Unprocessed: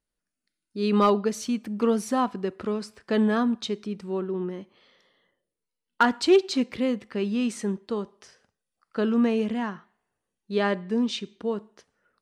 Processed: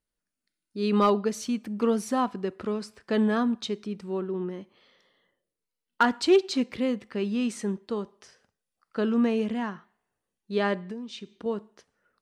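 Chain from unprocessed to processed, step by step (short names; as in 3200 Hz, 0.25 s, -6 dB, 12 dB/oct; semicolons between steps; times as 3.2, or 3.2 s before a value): 10.87–11.46 compressor 10:1, threshold -33 dBFS, peak gain reduction 12.5 dB; gain -1.5 dB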